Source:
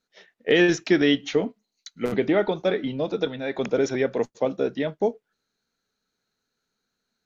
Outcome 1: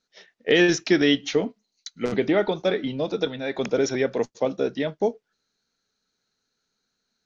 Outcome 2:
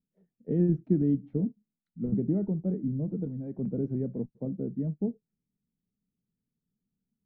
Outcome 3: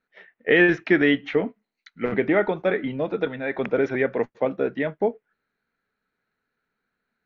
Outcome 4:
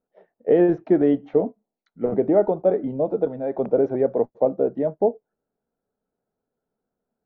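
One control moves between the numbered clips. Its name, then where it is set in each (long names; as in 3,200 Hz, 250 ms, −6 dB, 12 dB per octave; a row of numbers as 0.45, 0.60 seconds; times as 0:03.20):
low-pass with resonance, frequency: 5,800, 180, 2,000, 690 Hertz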